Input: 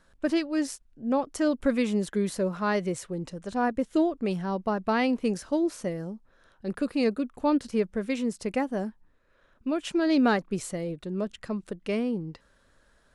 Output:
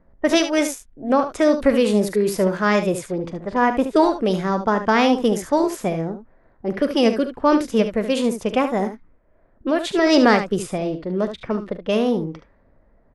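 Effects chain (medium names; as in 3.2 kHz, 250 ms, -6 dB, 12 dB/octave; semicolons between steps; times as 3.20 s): level-controlled noise filter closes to 570 Hz, open at -24.5 dBFS; formant shift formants +3 st; early reflections 43 ms -16 dB, 73 ms -10 dB; trim +8 dB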